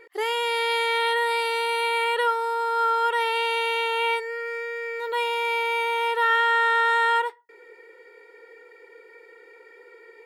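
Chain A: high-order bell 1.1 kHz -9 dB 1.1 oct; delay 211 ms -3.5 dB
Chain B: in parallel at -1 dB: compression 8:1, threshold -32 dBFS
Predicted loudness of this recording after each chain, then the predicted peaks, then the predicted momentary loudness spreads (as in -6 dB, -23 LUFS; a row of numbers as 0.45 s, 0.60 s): -24.0 LUFS, -21.5 LUFS; -11.5 dBFS, -10.0 dBFS; 7 LU, 7 LU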